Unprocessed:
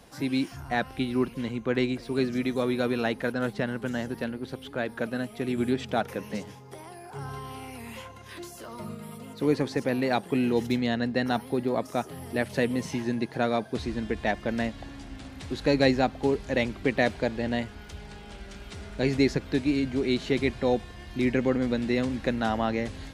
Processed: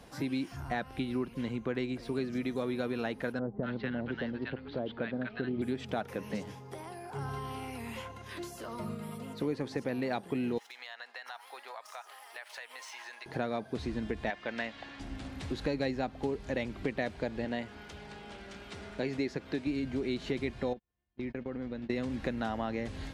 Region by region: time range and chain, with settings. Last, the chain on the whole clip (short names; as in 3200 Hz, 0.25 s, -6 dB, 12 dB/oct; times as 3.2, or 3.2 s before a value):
3.39–5.62 steep low-pass 4300 Hz + bands offset in time lows, highs 0.24 s, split 950 Hz
10.58–13.26 median filter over 3 samples + HPF 850 Hz 24 dB/oct + compressor, threshold -40 dBFS
14.3–15 LPF 2800 Hz + tilt +4.5 dB/oct
17.45–19.67 HPF 220 Hz 6 dB/oct + high shelf 7700 Hz -5.5 dB
20.73–21.9 gate -29 dBFS, range -43 dB + compressor 3:1, threshold -37 dBFS + air absorption 140 m
whole clip: high shelf 4800 Hz -5 dB; compressor 3:1, threshold -32 dBFS